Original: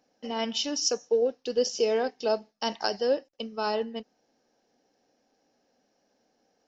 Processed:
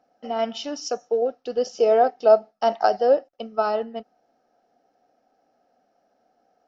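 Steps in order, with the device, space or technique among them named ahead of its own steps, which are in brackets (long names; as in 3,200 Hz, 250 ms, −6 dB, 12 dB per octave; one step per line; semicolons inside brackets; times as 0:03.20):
inside a helmet (high-shelf EQ 3,800 Hz −10 dB; hollow resonant body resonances 710/1,300 Hz, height 13 dB, ringing for 25 ms)
0:01.75–0:03.62: dynamic equaliser 600 Hz, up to +5 dB, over −33 dBFS, Q 0.79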